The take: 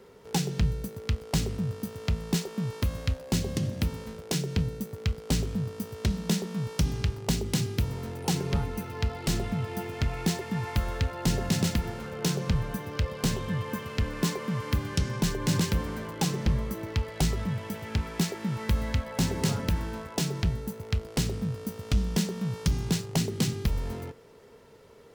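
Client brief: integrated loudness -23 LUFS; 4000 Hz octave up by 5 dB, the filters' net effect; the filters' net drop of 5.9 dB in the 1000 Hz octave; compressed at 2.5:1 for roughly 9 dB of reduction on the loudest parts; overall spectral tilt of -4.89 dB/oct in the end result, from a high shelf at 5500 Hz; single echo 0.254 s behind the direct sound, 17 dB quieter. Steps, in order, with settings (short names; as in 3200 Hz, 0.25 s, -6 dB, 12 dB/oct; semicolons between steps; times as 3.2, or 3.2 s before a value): bell 1000 Hz -8 dB; bell 4000 Hz +8.5 dB; high shelf 5500 Hz -4.5 dB; compressor 2.5:1, threshold -35 dBFS; echo 0.254 s -17 dB; gain +14 dB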